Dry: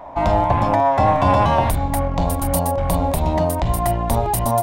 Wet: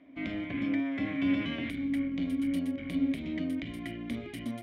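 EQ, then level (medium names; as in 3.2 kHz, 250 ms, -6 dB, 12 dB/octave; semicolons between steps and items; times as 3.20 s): dynamic bell 1.8 kHz, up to +6 dB, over -34 dBFS, Q 0.88; vowel filter i; 0.0 dB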